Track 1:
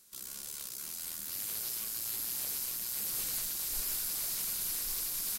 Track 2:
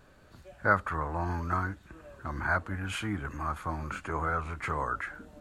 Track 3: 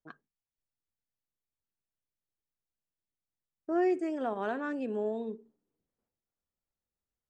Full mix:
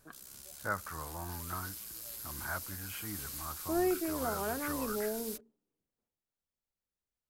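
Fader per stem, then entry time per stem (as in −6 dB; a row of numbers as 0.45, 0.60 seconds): −8.0, −10.5, −3.0 decibels; 0.00, 0.00, 0.00 seconds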